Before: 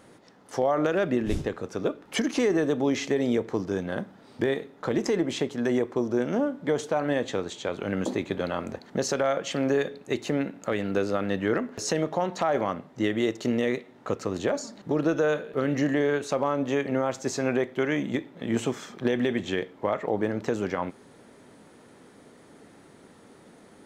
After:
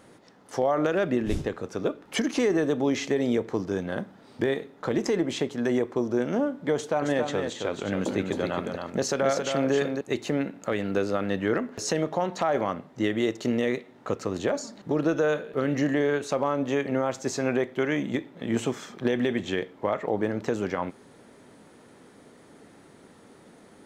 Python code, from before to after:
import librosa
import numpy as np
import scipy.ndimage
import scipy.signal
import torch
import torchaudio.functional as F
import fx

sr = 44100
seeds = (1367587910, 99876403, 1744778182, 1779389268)

y = fx.echo_single(x, sr, ms=270, db=-5.5, at=(6.75, 10.01))